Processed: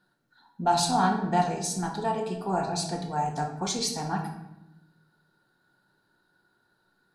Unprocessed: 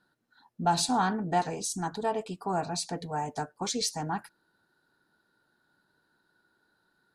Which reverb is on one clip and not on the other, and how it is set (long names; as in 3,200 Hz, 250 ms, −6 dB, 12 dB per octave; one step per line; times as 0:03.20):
rectangular room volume 340 cubic metres, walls mixed, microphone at 0.94 metres